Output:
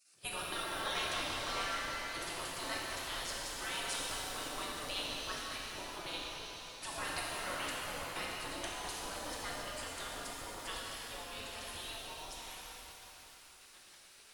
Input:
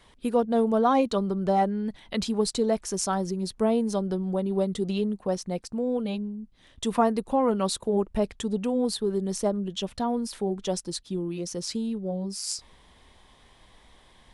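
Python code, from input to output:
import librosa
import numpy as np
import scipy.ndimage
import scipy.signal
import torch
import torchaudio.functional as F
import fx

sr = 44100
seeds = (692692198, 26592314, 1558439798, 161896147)

y = fx.spec_gate(x, sr, threshold_db=-25, keep='weak')
y = fx.rev_shimmer(y, sr, seeds[0], rt60_s=3.6, semitones=7, shimmer_db=-8, drr_db=-5.0)
y = y * librosa.db_to_amplitude(2.5)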